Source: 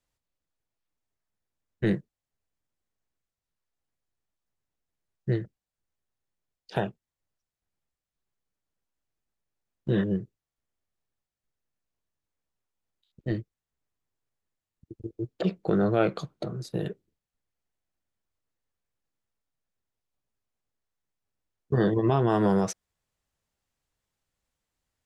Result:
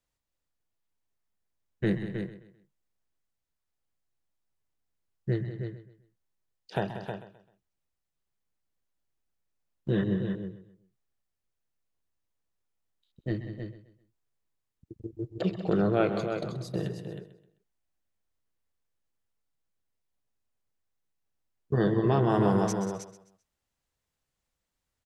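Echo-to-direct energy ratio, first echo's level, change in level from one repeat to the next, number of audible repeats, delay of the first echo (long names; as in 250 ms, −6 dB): −5.0 dB, −11.5 dB, repeats not evenly spaced, 7, 130 ms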